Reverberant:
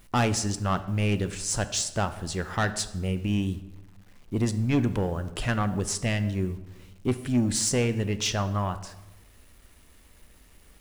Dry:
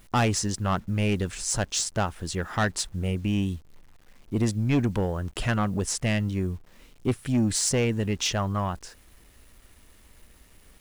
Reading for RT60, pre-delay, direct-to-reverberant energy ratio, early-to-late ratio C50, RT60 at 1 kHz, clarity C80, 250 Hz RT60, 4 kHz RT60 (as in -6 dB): 1.0 s, 6 ms, 10.5 dB, 13.5 dB, 0.95 s, 15.5 dB, 1.3 s, 0.70 s